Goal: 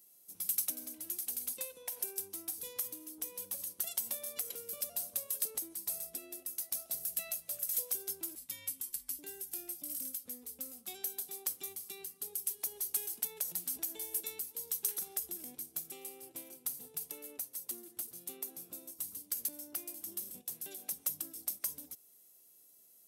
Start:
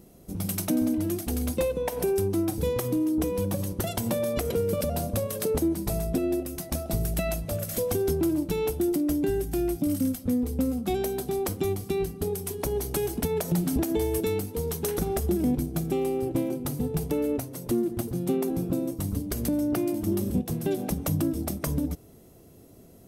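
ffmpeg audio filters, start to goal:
-filter_complex "[0:a]asettb=1/sr,asplit=3[a][b][c];[a]atrim=end=8.354[d];[b]atrim=start=8.35:end=9.19,asetpts=PTS-STARTPTS,afade=t=in:d=0.004:c=qsin,afade=t=out:st=0.836:d=0.004:c=qsin,afreqshift=-340[e];[c]atrim=start=9.186[f];[d][e]acrossfade=d=0.004:c1=hsin:c2=qsin[g];[g][f]acrossfade=d=0.004:c1=qsin:c2=hsin,aderivative,volume=-2.5dB"

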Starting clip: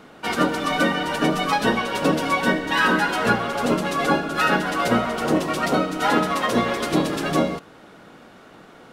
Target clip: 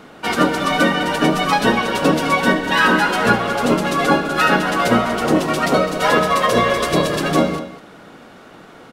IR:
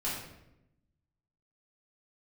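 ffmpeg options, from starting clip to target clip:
-filter_complex "[0:a]asettb=1/sr,asplit=3[a][b][c];[a]atrim=end=5.744[d];[b]atrim=start=5.74:end=7.21,asetpts=PTS-STARTPTS,afade=t=in:d=0.004:c=qsin,afade=t=out:st=1.466:d=0.004:c=qsin,aecho=1:1:1.8:0.52,atrim=end_sample=64827[e];[c]atrim=start=7.206[f];[d][e]acrossfade=d=0.004:c1=hsin:c2=qsin[g];[g][f]acrossfade=d=0.004:c1=qsin:c2=hsin,aecho=1:1:205:0.211,volume=4.5dB"

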